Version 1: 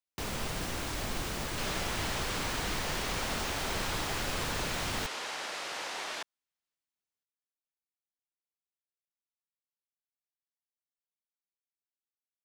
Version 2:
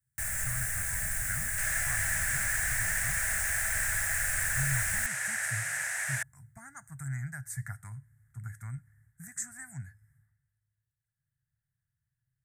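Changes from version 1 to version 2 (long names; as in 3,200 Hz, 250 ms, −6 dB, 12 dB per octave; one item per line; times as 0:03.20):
speech: unmuted
second sound +3.0 dB
master: add drawn EQ curve 110 Hz 0 dB, 370 Hz −29 dB, 650 Hz −8 dB, 1,100 Hz −16 dB, 1,700 Hz +11 dB, 3,100 Hz −15 dB, 4,500 Hz −14 dB, 8,300 Hz +14 dB, 13,000 Hz +10 dB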